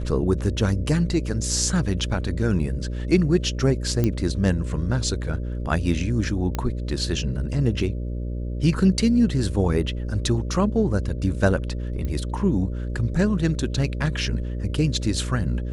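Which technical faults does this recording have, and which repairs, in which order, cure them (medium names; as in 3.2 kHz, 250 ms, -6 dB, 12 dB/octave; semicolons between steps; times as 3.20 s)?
buzz 60 Hz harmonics 10 -28 dBFS
4.04 s: pop -10 dBFS
6.55 s: pop -12 dBFS
12.05 s: pop -18 dBFS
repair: de-click; de-hum 60 Hz, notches 10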